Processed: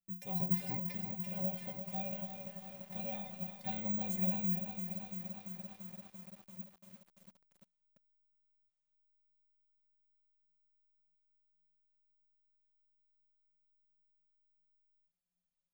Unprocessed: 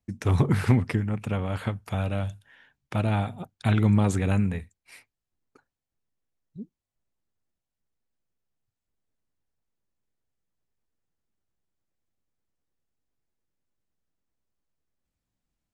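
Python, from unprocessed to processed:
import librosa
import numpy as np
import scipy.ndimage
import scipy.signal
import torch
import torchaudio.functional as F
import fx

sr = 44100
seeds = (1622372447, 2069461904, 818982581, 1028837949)

y = fx.fixed_phaser(x, sr, hz=350.0, stages=6)
y = fx.stiff_resonator(y, sr, f0_hz=180.0, decay_s=0.29, stiffness=0.008)
y = fx.echo_thinned(y, sr, ms=355, feedback_pct=50, hz=360.0, wet_db=-18.0)
y = (np.kron(y[::2], np.eye(2)[0]) * 2)[:len(y)]
y = fx.echo_crushed(y, sr, ms=341, feedback_pct=80, bits=9, wet_db=-7.5)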